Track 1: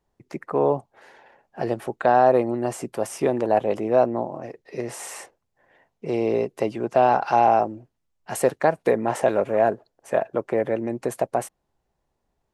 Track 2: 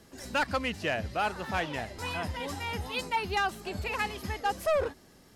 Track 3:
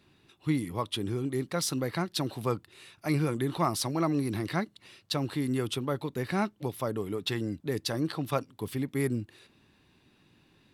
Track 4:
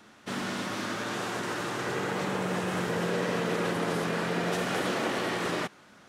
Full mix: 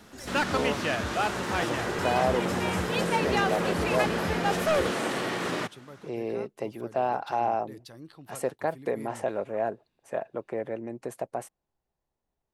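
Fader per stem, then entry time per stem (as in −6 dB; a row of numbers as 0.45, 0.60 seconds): −9.5, +1.0, −16.0, 0.0 decibels; 0.00, 0.00, 0.00, 0.00 seconds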